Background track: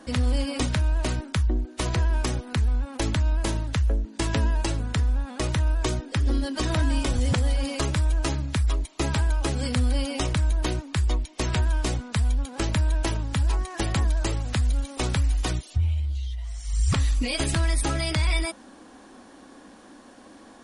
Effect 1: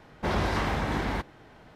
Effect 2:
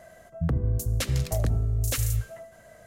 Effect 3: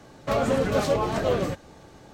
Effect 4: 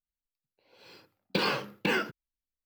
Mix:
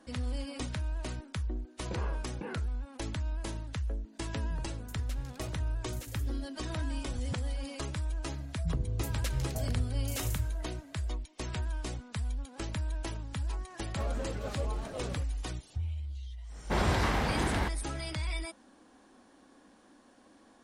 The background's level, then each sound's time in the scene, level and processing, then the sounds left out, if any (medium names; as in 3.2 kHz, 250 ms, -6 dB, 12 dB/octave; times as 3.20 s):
background track -11.5 dB
0.56 s: add 4 -11 dB + low-pass 1.2 kHz
4.09 s: add 2 -18 dB, fades 0.10 s
8.24 s: add 2 -8.5 dB
13.69 s: add 3 -16 dB
16.47 s: add 1 -2 dB, fades 0.10 s + treble shelf 4.8 kHz +4 dB